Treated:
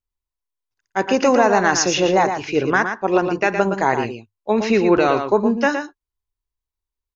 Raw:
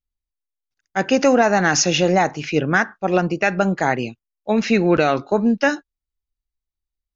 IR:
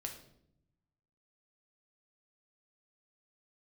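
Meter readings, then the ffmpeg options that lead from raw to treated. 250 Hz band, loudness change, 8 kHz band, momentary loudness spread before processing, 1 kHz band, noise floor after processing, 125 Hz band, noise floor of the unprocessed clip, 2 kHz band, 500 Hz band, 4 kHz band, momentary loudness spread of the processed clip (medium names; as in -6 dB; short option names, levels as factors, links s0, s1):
-1.0 dB, +0.5 dB, no reading, 9 LU, +2.0 dB, under -85 dBFS, -4.5 dB, under -85 dBFS, -0.5 dB, +1.5 dB, -1.0 dB, 10 LU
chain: -filter_complex "[0:a]equalizer=f=100:t=o:w=0.33:g=9,equalizer=f=160:t=o:w=0.33:g=-8,equalizer=f=400:t=o:w=0.33:g=7,equalizer=f=1000:t=o:w=0.33:g=11,asplit=2[s0][s1];[s1]aecho=0:1:115:0.422[s2];[s0][s2]amix=inputs=2:normalize=0,volume=0.794"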